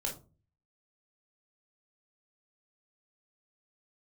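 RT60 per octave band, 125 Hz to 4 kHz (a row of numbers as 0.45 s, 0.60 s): 0.65 s, 0.50 s, 0.40 s, 0.30 s, 0.20 s, 0.20 s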